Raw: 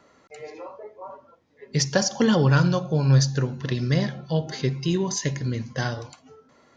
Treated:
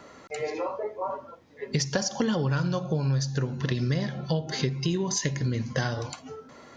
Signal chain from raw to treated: compression 6:1, threshold -33 dBFS, peak gain reduction 18.5 dB; trim +8.5 dB

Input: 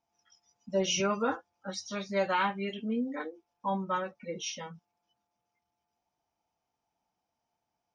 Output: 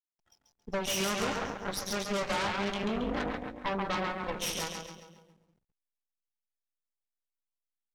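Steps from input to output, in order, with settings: compression 3:1, threshold -33 dBFS, peak gain reduction 7.5 dB; two-band feedback delay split 460 Hz, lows 197 ms, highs 137 ms, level -4 dB; Chebyshev shaper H 8 -11 dB, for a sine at -21 dBFS; hysteresis with a dead band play -59 dBFS

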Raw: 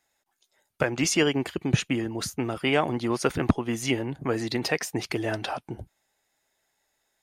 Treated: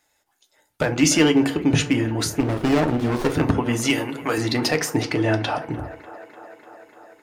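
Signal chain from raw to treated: 3.90–4.38 s: tilt EQ +3.5 dB/octave; in parallel at 0 dB: peak limiter -17 dBFS, peak gain reduction 10 dB; 5.02–5.56 s: on the sum: distance through air 54 m; overload inside the chain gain 12 dB; on a send: feedback echo behind a band-pass 297 ms, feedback 76%, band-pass 880 Hz, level -14 dB; on the sum: FDN reverb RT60 0.37 s, low-frequency decay 1.45×, high-frequency decay 0.65×, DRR 5.5 dB; 2.40–3.32 s: sliding maximum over 17 samples

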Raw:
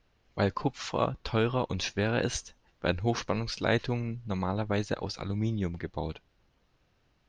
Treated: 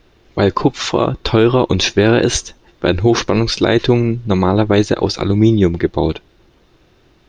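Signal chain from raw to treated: small resonant body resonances 350/3600 Hz, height 10 dB, ringing for 30 ms; loudness maximiser +17 dB; trim -1 dB

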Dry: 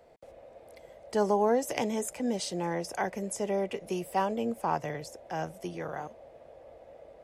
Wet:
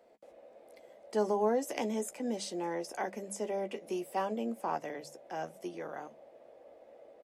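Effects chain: resonant low shelf 160 Hz -13 dB, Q 1.5; hum notches 50/100/150/200 Hz; doubling 14 ms -10 dB; trim -5.5 dB

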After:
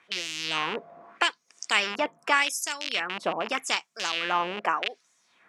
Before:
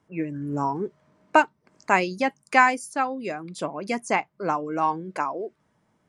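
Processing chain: rattle on loud lows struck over -38 dBFS, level -25 dBFS; wide varispeed 1.11×; LFO band-pass sine 0.83 Hz 620–6900 Hz; spectrum-flattening compressor 2:1

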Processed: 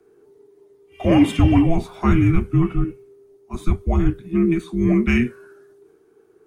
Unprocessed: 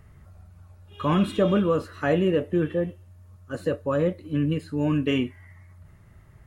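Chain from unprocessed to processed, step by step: frequency shift -490 Hz; three bands expanded up and down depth 40%; trim +6.5 dB

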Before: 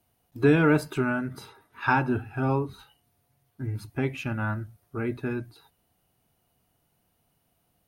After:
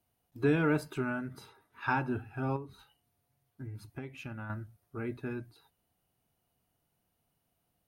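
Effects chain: 2.56–4.50 s: compression 6:1, threshold -31 dBFS, peak gain reduction 9.5 dB; trim -7.5 dB

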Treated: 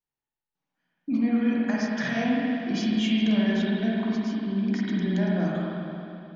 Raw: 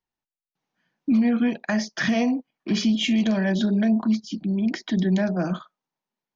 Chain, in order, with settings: spring tank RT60 2.9 s, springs 44/51 ms, chirp 40 ms, DRR -5 dB; trim -8 dB

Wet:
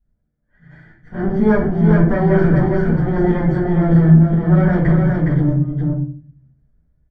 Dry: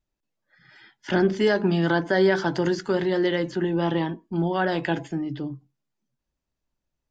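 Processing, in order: comb filter that takes the minimum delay 0.49 ms; peaking EQ 110 Hz +14.5 dB 2.9 oct; comb 1.3 ms, depth 34%; level rider gain up to 4.5 dB; slow attack 187 ms; compression, threshold -12 dBFS, peak gain reduction 6 dB; transient shaper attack -3 dB, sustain +6 dB; Savitzky-Golay filter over 41 samples; on a send: delay 413 ms -4 dB; on the sum: simulated room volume 40 m³, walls mixed, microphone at 1.9 m; trim -9.5 dB

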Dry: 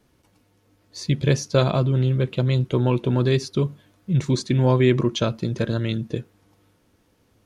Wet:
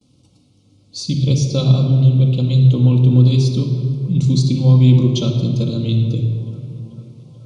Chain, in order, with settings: high-pass 77 Hz; on a send: feedback echo behind a band-pass 436 ms, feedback 73%, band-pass 1 kHz, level -22.5 dB; on the sum: resampled via 22.05 kHz; in parallel at 0 dB: compression, threshold -32 dBFS, peak gain reduction 18 dB; on the sum: graphic EQ 125/500/1000/2000/4000 Hz +8/-4/-8/-10/+6 dB; gate with hold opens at -51 dBFS; Butterworth band-stop 1.7 kHz, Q 2; simulated room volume 3500 m³, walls mixed, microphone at 2.1 m; trim -2 dB

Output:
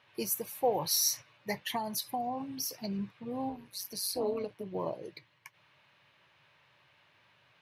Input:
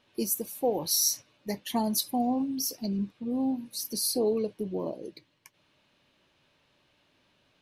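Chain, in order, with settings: ten-band graphic EQ 125 Hz +8 dB, 250 Hz -10 dB, 1 kHz +6 dB, 2 kHz +8 dB, 8 kHz -4 dB; 1.67–2.90 s: compression 5:1, threshold -30 dBFS, peak gain reduction 8.5 dB; 3.49–4.75 s: AM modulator 190 Hz, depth 50%; high-pass 90 Hz; trim -1.5 dB

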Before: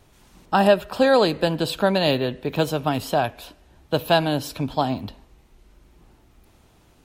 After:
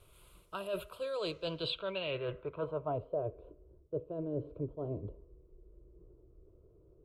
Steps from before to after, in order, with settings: static phaser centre 1.2 kHz, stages 8; reverse; compression 12:1, threshold -30 dBFS, peak gain reduction 17.5 dB; reverse; added noise white -76 dBFS; low-pass sweep 11 kHz -> 400 Hz, 0.95–3.36 s; trim -4.5 dB

